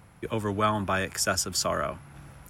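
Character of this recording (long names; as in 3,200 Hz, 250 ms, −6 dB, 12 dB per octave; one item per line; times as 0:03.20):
background noise floor −54 dBFS
spectral slope −3.5 dB per octave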